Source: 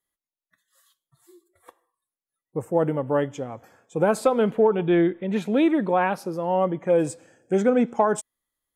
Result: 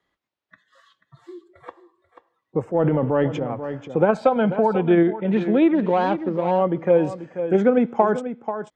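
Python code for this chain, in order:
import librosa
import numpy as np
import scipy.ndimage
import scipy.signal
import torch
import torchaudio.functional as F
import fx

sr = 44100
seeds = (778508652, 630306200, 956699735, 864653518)

p1 = fx.median_filter(x, sr, points=25, at=(5.75, 6.51))
p2 = fx.highpass(p1, sr, hz=75.0, slope=6)
p3 = fx.high_shelf(p2, sr, hz=6100.0, db=-8.0)
p4 = fx.transient(p3, sr, attack_db=-6, sustain_db=8, at=(2.65, 3.41))
p5 = fx.comb(p4, sr, ms=1.3, depth=0.62, at=(4.14, 4.76))
p6 = fx.level_steps(p5, sr, step_db=9)
p7 = p5 + (p6 * 10.0 ** (-1.5 / 20.0))
p8 = fx.air_absorb(p7, sr, metres=170.0)
p9 = p8 + fx.echo_single(p8, sr, ms=487, db=-13.5, dry=0)
y = fx.band_squash(p9, sr, depth_pct=40)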